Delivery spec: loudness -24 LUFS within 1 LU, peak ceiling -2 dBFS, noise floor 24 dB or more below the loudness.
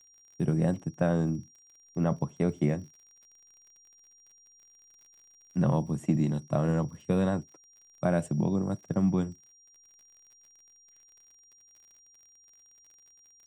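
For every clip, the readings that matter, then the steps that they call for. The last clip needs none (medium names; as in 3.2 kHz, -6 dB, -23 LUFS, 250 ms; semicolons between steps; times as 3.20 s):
tick rate 47 per s; steady tone 5.7 kHz; tone level -57 dBFS; loudness -29.5 LUFS; peak level -13.0 dBFS; loudness target -24.0 LUFS
-> de-click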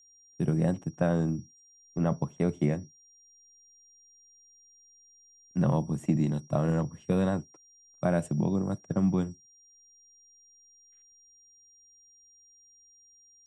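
tick rate 0.074 per s; steady tone 5.7 kHz; tone level -57 dBFS
-> band-stop 5.7 kHz, Q 30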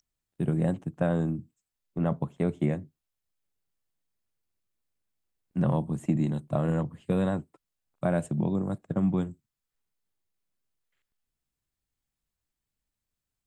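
steady tone not found; loudness -29.5 LUFS; peak level -13.0 dBFS; loudness target -24.0 LUFS
-> trim +5.5 dB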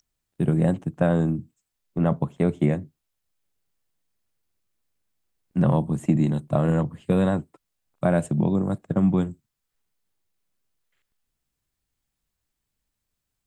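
loudness -24.0 LUFS; peak level -7.5 dBFS; noise floor -82 dBFS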